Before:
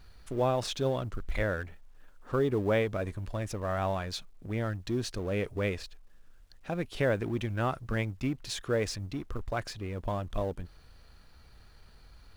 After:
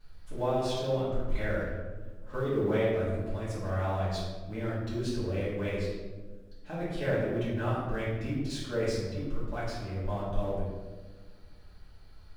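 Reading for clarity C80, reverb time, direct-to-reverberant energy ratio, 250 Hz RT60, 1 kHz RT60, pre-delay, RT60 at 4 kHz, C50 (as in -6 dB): 2.5 dB, 1.4 s, -11.0 dB, 2.1 s, 1.1 s, 3 ms, 0.75 s, 0.0 dB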